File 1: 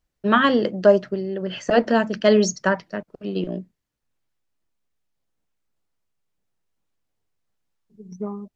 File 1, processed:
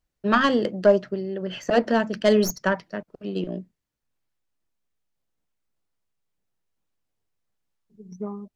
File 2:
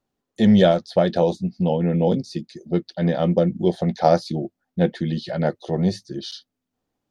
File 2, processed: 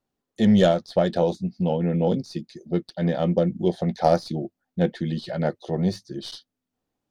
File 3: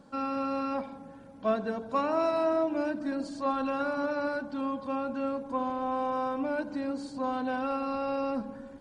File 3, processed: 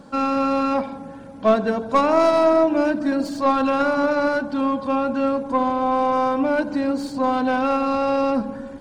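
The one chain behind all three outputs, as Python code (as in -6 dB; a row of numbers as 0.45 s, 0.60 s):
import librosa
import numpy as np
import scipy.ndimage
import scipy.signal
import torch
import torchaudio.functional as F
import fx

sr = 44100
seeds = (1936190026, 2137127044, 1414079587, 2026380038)

y = fx.tracing_dist(x, sr, depth_ms=0.046)
y = y * 10.0 ** (-6 / 20.0) / np.max(np.abs(y))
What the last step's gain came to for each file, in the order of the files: -2.5 dB, -2.5 dB, +11.0 dB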